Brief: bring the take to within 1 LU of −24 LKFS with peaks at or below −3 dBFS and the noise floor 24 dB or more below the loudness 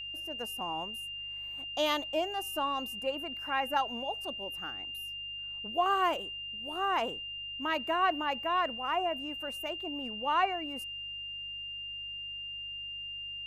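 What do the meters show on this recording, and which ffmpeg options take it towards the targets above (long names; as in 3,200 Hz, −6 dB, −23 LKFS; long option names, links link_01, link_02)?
mains hum 50 Hz; hum harmonics up to 150 Hz; level of the hum −58 dBFS; interfering tone 2,800 Hz; level of the tone −38 dBFS; integrated loudness −33.5 LKFS; sample peak −17.0 dBFS; target loudness −24.0 LKFS
→ -af "bandreject=frequency=50:width_type=h:width=4,bandreject=frequency=100:width_type=h:width=4,bandreject=frequency=150:width_type=h:width=4"
-af "bandreject=frequency=2800:width=30"
-af "volume=9.5dB"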